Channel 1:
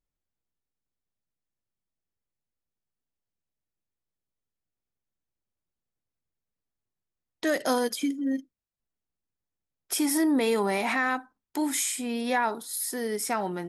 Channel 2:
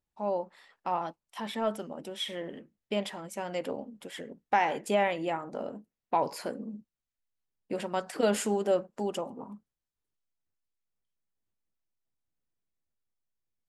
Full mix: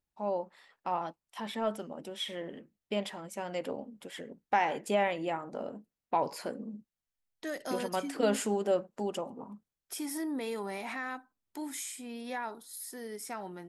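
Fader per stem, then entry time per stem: -11.5, -2.0 dB; 0.00, 0.00 s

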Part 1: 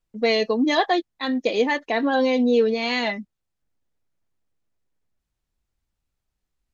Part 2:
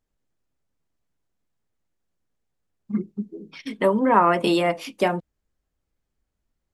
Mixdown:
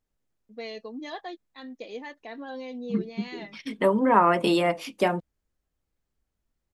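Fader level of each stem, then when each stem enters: -17.5, -2.0 dB; 0.35, 0.00 s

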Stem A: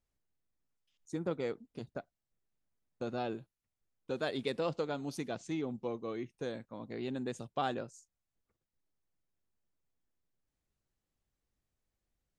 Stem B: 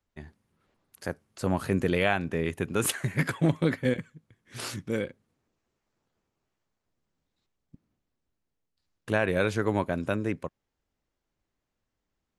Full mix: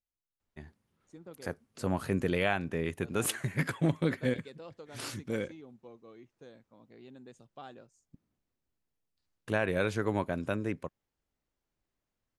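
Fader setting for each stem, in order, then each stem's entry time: -13.5, -4.0 dB; 0.00, 0.40 s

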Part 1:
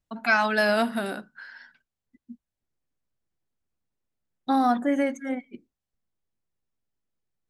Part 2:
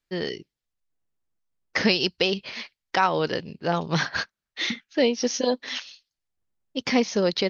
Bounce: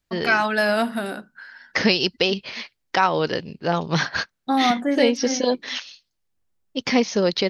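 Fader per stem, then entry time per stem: +2.0, +2.5 dB; 0.00, 0.00 s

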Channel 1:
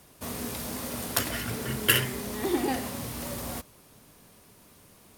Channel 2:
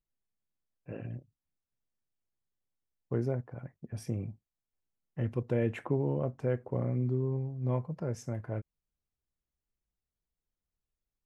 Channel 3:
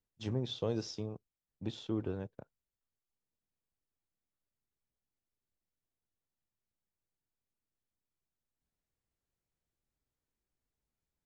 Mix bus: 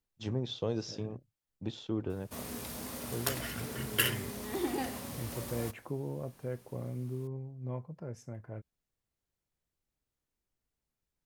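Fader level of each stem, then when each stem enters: -6.5, -7.5, +1.0 dB; 2.10, 0.00, 0.00 s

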